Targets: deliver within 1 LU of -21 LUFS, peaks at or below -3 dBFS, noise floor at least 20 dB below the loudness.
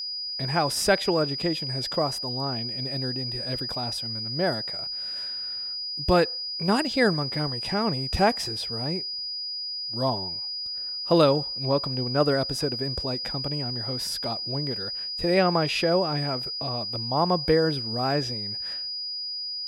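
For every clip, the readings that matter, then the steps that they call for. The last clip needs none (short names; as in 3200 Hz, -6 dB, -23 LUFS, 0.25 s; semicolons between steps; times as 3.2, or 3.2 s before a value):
steady tone 4900 Hz; tone level -30 dBFS; loudness -26.0 LUFS; peak -7.0 dBFS; loudness target -21.0 LUFS
-> notch 4900 Hz, Q 30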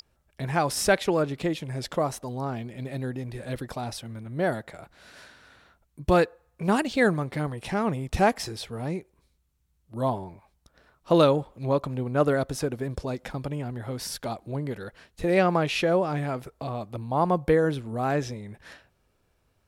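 steady tone none; loudness -27.5 LUFS; peak -7.5 dBFS; loudness target -21.0 LUFS
-> gain +6.5 dB; limiter -3 dBFS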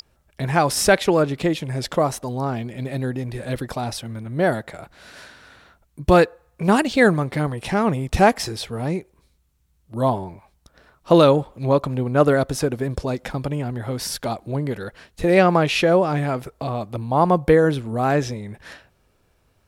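loudness -21.0 LUFS; peak -3.0 dBFS; noise floor -63 dBFS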